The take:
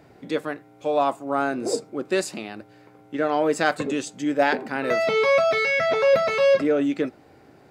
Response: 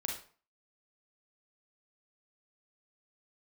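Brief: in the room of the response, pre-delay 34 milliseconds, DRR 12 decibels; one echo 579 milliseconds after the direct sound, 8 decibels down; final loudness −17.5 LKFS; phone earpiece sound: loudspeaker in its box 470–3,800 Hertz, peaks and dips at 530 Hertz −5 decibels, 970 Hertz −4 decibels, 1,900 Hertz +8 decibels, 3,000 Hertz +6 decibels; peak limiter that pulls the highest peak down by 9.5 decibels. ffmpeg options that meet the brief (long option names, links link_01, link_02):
-filter_complex "[0:a]alimiter=limit=-15.5dB:level=0:latency=1,aecho=1:1:579:0.398,asplit=2[link_01][link_02];[1:a]atrim=start_sample=2205,adelay=34[link_03];[link_02][link_03]afir=irnorm=-1:irlink=0,volume=-14dB[link_04];[link_01][link_04]amix=inputs=2:normalize=0,highpass=470,equalizer=frequency=530:width_type=q:width=4:gain=-5,equalizer=frequency=970:width_type=q:width=4:gain=-4,equalizer=frequency=1900:width_type=q:width=4:gain=8,equalizer=frequency=3000:width_type=q:width=4:gain=6,lowpass=frequency=3800:width=0.5412,lowpass=frequency=3800:width=1.3066,volume=8dB"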